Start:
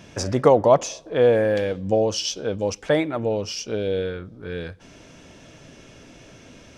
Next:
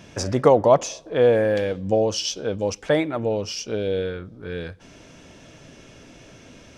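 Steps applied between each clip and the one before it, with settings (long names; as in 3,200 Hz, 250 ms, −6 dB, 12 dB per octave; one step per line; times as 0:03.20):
no processing that can be heard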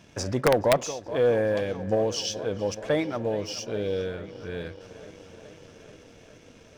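delay with a low-pass on its return 425 ms, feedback 76%, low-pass 3,600 Hz, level −16.5 dB
wrap-around overflow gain 4.5 dB
leveller curve on the samples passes 1
level −8 dB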